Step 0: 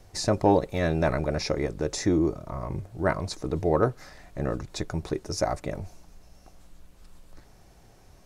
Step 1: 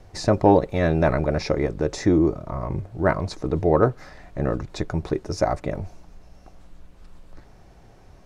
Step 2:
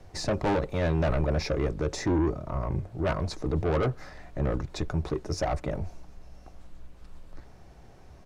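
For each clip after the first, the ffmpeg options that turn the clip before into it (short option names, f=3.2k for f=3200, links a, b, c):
-af "lowpass=f=2.6k:p=1,volume=5dB"
-filter_complex "[0:a]acrossover=split=100[a][b];[a]asplit=2[c][d];[d]adelay=14,volume=-3dB[e];[c][e]amix=inputs=2:normalize=0[f];[b]asoftclip=type=tanh:threshold=-20.5dB[g];[f][g]amix=inputs=2:normalize=0,volume=-2dB"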